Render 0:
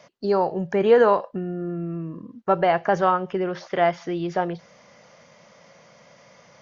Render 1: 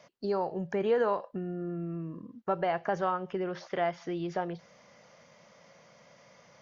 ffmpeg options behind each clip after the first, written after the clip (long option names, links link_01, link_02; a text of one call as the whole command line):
ffmpeg -i in.wav -af "acompressor=threshold=-26dB:ratio=1.5,volume=-6dB" out.wav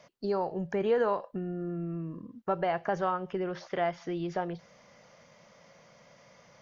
ffmpeg -i in.wav -af "lowshelf=frequency=61:gain=9.5" out.wav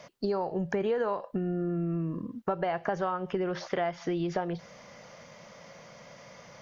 ffmpeg -i in.wav -af "acompressor=threshold=-35dB:ratio=4,volume=7.5dB" out.wav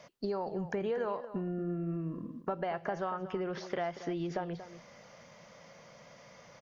ffmpeg -i in.wav -filter_complex "[0:a]asplit=2[link_01][link_02];[link_02]adelay=233.2,volume=-13dB,highshelf=frequency=4000:gain=-5.25[link_03];[link_01][link_03]amix=inputs=2:normalize=0,volume=-5dB" out.wav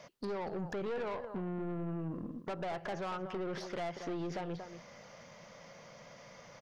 ffmpeg -i in.wav -af "aeval=exprs='(tanh(70.8*val(0)+0.4)-tanh(0.4))/70.8':channel_layout=same,volume=2.5dB" out.wav